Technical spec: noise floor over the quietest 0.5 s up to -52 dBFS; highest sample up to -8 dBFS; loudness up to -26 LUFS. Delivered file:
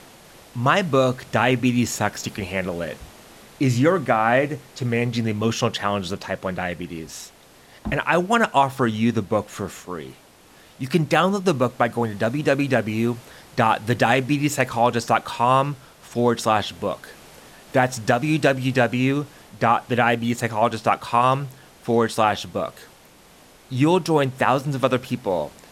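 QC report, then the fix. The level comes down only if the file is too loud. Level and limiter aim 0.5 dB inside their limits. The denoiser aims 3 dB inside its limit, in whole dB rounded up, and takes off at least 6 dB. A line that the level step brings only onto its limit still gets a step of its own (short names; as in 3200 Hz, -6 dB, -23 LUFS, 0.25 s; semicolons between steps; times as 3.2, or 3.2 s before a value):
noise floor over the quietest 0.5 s -50 dBFS: fail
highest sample -4.0 dBFS: fail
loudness -21.5 LUFS: fail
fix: gain -5 dB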